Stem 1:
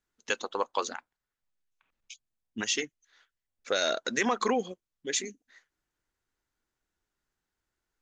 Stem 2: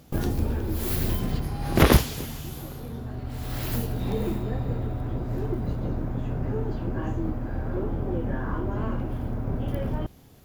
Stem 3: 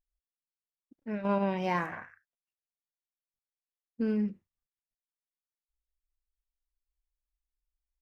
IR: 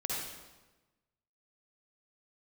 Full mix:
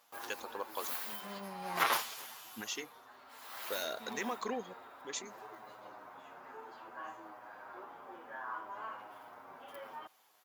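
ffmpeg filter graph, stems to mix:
-filter_complex "[0:a]volume=-11dB,asplit=2[a][b];[1:a]highpass=f=1k:t=q:w=1.8,asplit=2[c][d];[d]adelay=8.1,afreqshift=-0.64[e];[c][e]amix=inputs=2:normalize=1,volume=-5.5dB[f];[2:a]volume=-14dB[g];[b]apad=whole_len=353636[h];[g][h]sidechaincompress=threshold=-45dB:ratio=8:attack=16:release=1050[i];[a][f][i]amix=inputs=3:normalize=0"

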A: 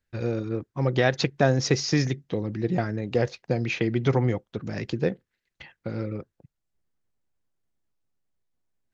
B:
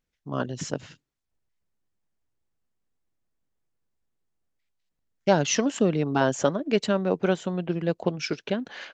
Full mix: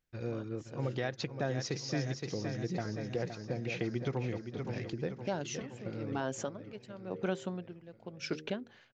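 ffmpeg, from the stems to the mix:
-filter_complex "[0:a]volume=-10dB,asplit=2[a][b];[b]volume=-8.5dB[c];[1:a]bandreject=f=77.41:t=h:w=4,bandreject=f=154.82:t=h:w=4,bandreject=f=232.23:t=h:w=4,bandreject=f=309.64:t=h:w=4,bandreject=f=387.05:t=h:w=4,bandreject=f=464.46:t=h:w=4,bandreject=f=541.87:t=h:w=4,aeval=exprs='val(0)*pow(10,-22*(0.5-0.5*cos(2*PI*0.95*n/s))/20)':c=same,volume=-4dB[d];[c]aecho=0:1:518|1036|1554|2072|2590|3108|3626|4144|4662:1|0.57|0.325|0.185|0.106|0.0602|0.0343|0.0195|0.0111[e];[a][d][e]amix=inputs=3:normalize=0,alimiter=limit=-23dB:level=0:latency=1:release=251"

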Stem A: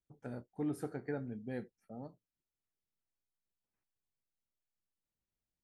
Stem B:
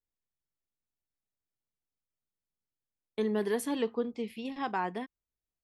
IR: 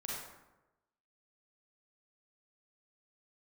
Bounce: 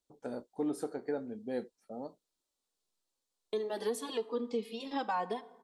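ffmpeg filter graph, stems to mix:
-filter_complex "[0:a]volume=-1.5dB[a];[1:a]asplit=2[b][c];[c]adelay=2.4,afreqshift=-1.6[d];[b][d]amix=inputs=2:normalize=1,adelay=350,volume=-1dB,asplit=2[e][f];[f]volume=-17dB[g];[2:a]atrim=start_sample=2205[h];[g][h]afir=irnorm=-1:irlink=0[i];[a][e][i]amix=inputs=3:normalize=0,equalizer=f=125:t=o:w=1:g=-10,equalizer=f=250:t=o:w=1:g=5,equalizer=f=500:t=o:w=1:g=8,equalizer=f=1k:t=o:w=1:g=7,equalizer=f=2k:t=o:w=1:g=-3,equalizer=f=4k:t=o:w=1:g=10,equalizer=f=8k:t=o:w=1:g=9,alimiter=level_in=0.5dB:limit=-24dB:level=0:latency=1:release=478,volume=-0.5dB"

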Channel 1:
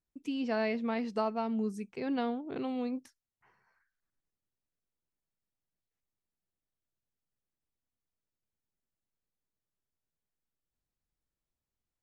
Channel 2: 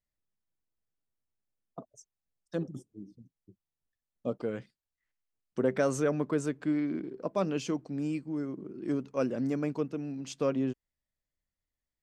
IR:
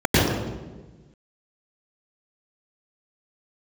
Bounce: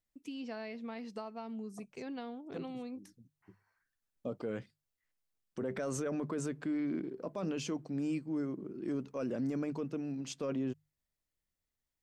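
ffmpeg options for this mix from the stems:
-filter_complex "[0:a]highshelf=f=3.9k:g=6,acompressor=threshold=-33dB:ratio=5,volume=-6dB,asplit=2[a][b];[1:a]bandreject=f=50:t=h:w=6,bandreject=f=100:t=h:w=6,bandreject=f=150:t=h:w=6,volume=-1dB[c];[b]apad=whole_len=530238[d];[c][d]sidechaincompress=threshold=-55dB:ratio=3:attack=16:release=468[e];[a][e]amix=inputs=2:normalize=0,alimiter=level_in=4.5dB:limit=-24dB:level=0:latency=1:release=15,volume=-4.5dB"

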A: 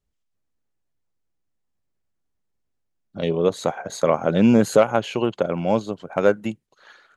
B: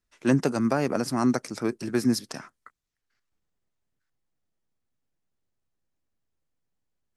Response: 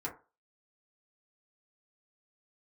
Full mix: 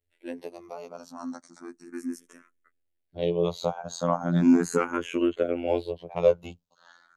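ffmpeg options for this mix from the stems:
-filter_complex "[0:a]volume=0dB[a];[1:a]highpass=260,bandreject=f=5k:w=5.1,volume=-8dB[b];[a][b]amix=inputs=2:normalize=0,equalizer=f=260:w=1.4:g=3.5,afftfilt=real='hypot(re,im)*cos(PI*b)':imag='0':win_size=2048:overlap=0.75,asplit=2[c][d];[d]afreqshift=0.36[e];[c][e]amix=inputs=2:normalize=1"

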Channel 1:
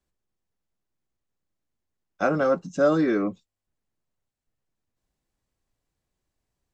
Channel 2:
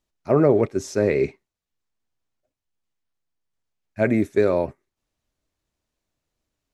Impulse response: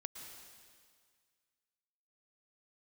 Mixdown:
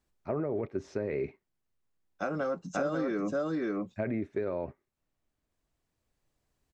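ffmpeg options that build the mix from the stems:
-filter_complex "[0:a]volume=1.5dB,asplit=2[a][b];[b]volume=-5dB[c];[1:a]lowpass=2.6k,alimiter=limit=-13dB:level=0:latency=1:release=23,volume=-4.5dB,asplit=2[d][e];[e]apad=whole_len=296809[f];[a][f]sidechaincompress=threshold=-45dB:ratio=3:attack=16:release=1300[g];[c]aecho=0:1:541:1[h];[g][d][h]amix=inputs=3:normalize=0,acompressor=threshold=-29dB:ratio=5"

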